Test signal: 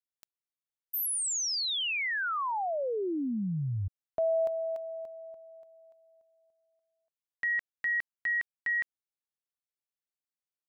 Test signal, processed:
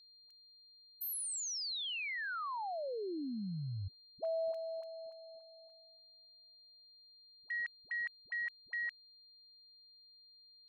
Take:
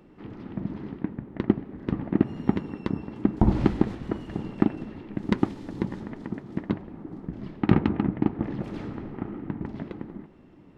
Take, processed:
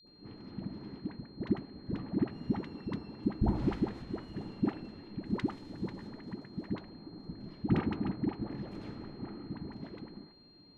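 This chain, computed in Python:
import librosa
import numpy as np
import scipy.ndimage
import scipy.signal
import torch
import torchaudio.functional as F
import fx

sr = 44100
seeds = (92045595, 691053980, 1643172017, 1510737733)

y = fx.dispersion(x, sr, late='highs', ms=74.0, hz=500.0)
y = fx.gate_hold(y, sr, open_db=-47.0, close_db=-53.0, hold_ms=71.0, range_db=-11, attack_ms=9.7, release_ms=322.0)
y = y + 10.0 ** (-51.0 / 20.0) * np.sin(2.0 * np.pi * 4200.0 * np.arange(len(y)) / sr)
y = y * 10.0 ** (-8.5 / 20.0)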